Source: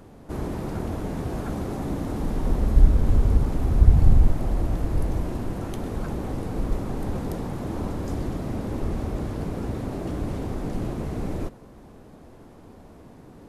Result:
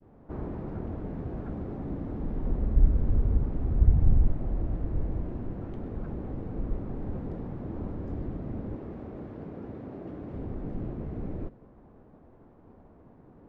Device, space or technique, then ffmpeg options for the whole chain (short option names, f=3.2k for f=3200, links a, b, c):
hearing-loss simulation: -filter_complex "[0:a]lowpass=1.5k,agate=range=-33dB:threshold=-44dB:ratio=3:detection=peak,asettb=1/sr,asplit=3[a][b][c];[a]atrim=end=8.754[d];[b]atrim=start=8.75:end=10.34,asetpts=PTS-STARTPTS,afade=t=in:d=0.004:c=qsin,afade=t=out:st=1.586:d=0.004:c=qsin,highpass=f=240:p=1[e];[c]atrim=start=10.336[f];[d][e]acrossfade=d=0.004:c1=hsin:c2=qsin[g];[g][f]acrossfade=d=0.004:c1=qsin:c2=hsin,adynamicequalizer=threshold=0.00355:dfrequency=1000:dqfactor=0.89:tfrequency=1000:tqfactor=0.89:attack=5:release=100:ratio=0.375:range=3:mode=cutabove:tftype=bell,volume=-5.5dB"